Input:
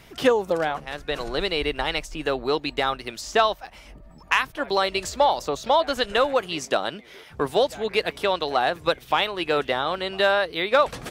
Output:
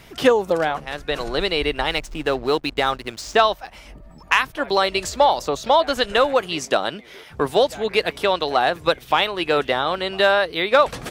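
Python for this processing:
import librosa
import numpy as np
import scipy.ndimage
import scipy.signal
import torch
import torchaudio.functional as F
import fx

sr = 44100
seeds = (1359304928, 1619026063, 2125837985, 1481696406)

y = fx.backlash(x, sr, play_db=-36.0, at=(1.9, 3.35))
y = F.gain(torch.from_numpy(y), 3.5).numpy()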